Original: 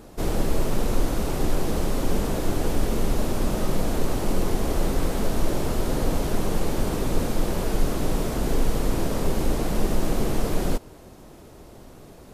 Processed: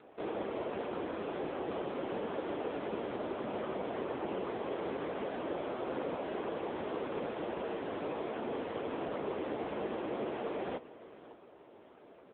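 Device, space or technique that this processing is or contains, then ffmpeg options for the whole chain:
satellite phone: -af "highpass=360,lowpass=3.2k,aecho=1:1:554:0.141,volume=-4dB" -ar 8000 -c:a libopencore_amrnb -b:a 6700

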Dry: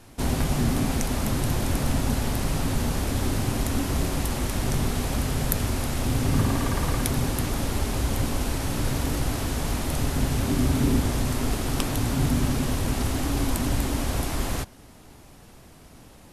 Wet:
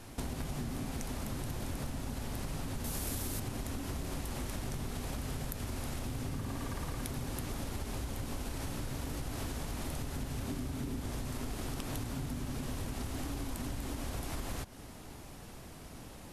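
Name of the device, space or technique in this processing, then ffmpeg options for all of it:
serial compression, peaks first: -filter_complex "[0:a]acompressor=threshold=-29dB:ratio=6,acompressor=threshold=-37dB:ratio=2.5,asettb=1/sr,asplit=3[a][b][c];[a]atrim=end=2.844[d];[b]atrim=start=2.84:end=3.4,asetpts=PTS-STARTPTS,afade=t=in:d=0.004:c=qsin,afade=t=out:st=0.556:d=0.004:c=qsin,aemphasis=mode=production:type=50kf[e];[c]atrim=start=3.396[f];[d][e]acrossfade=d=0.004:c1=hsin:c2=qsin[g];[g][f]acrossfade=d=0.004:c1=qsin:c2=hsin"

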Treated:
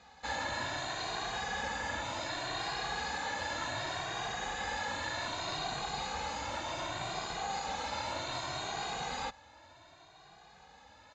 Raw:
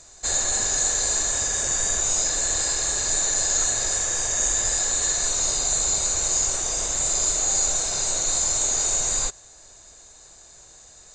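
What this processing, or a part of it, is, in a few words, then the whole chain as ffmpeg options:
barber-pole flanger into a guitar amplifier: -filter_complex "[0:a]asplit=2[a][b];[b]adelay=2,afreqshift=0.66[c];[a][c]amix=inputs=2:normalize=1,asoftclip=type=tanh:threshold=-23.5dB,highpass=98,equalizer=f=410:t=q:w=4:g=-9,equalizer=f=600:t=q:w=4:g=-4,equalizer=f=850:t=q:w=4:g=8,lowpass=f=3.5k:w=0.5412,lowpass=f=3.5k:w=1.3066,volume=2.5dB"

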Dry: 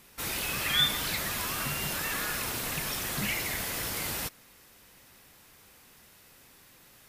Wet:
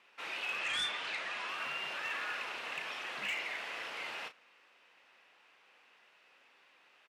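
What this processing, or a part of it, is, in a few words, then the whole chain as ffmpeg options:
megaphone: -filter_complex "[0:a]highpass=580,lowpass=2.7k,equalizer=f=2.7k:t=o:w=0.39:g=7,asoftclip=type=hard:threshold=-27.5dB,asplit=2[a][b];[b]adelay=35,volume=-10dB[c];[a][c]amix=inputs=2:normalize=0,asettb=1/sr,asplit=3[d][e][f];[d]atrim=end=0.594[g];[e]atrim=start=0.59:end=1.49,asetpts=PTS-STARTPTS,afade=t=in:d=0.004:c=qsin,afade=t=out:st=0.896:d=0.004:c=qsin,lowpass=f=10k:w=0.5412,lowpass=f=10k:w=1.3066[h];[f]atrim=start=1.486[i];[g][h]acrossfade=d=0.004:c1=hsin:c2=qsin[j];[j][i]acrossfade=d=0.004:c1=qsin:c2=hsin,volume=-4dB"

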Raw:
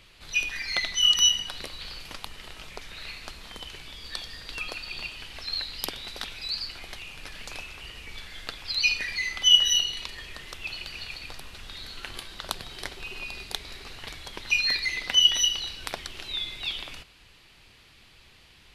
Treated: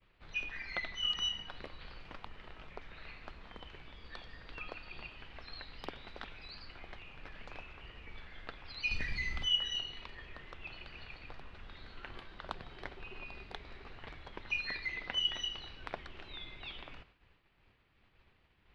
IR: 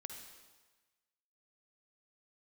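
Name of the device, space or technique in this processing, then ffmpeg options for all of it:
hearing-loss simulation: -filter_complex "[0:a]lowpass=1.9k,agate=range=-33dB:threshold=-52dB:ratio=3:detection=peak,asplit=3[a][b][c];[a]afade=t=out:st=8.9:d=0.02[d];[b]bass=f=250:g=14,treble=f=4k:g=13,afade=t=in:st=8.9:d=0.02,afade=t=out:st=9.44:d=0.02[e];[c]afade=t=in:st=9.44:d=0.02[f];[d][e][f]amix=inputs=3:normalize=0,volume=-5.5dB"

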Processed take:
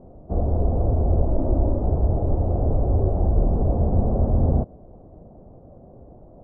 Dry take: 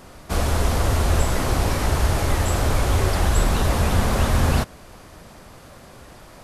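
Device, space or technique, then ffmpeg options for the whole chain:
under water: -filter_complex "[0:a]lowpass=f=610:w=0.5412,lowpass=f=610:w=1.3066,lowpass=3.2k,equalizer=f=720:t=o:w=0.34:g=5,asettb=1/sr,asplit=3[a][b][c];[a]atrim=end=1.274[d];[b]atrim=start=1.27:end=1.8,asetpts=PTS-STARTPTS,afade=t=in:d=0.004:c=qsin,afade=t=out:st=0.526:d=0.004:c=qsin,aecho=1:1:3.3:0.51,atrim=end_sample=23373[e];[c]atrim=start=1.796[f];[d][e]acrossfade=d=0.004:c1=hsin:c2=qsin[g];[g][f]acrossfade=d=0.004:c1=qsin:c2=hsin"

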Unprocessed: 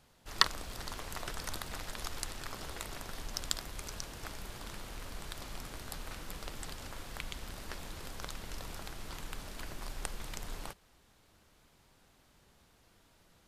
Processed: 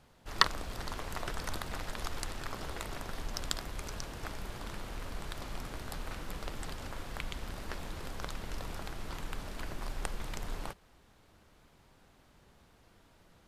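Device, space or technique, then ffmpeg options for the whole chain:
behind a face mask: -af "highshelf=f=3.1k:g=-7.5,volume=4dB"

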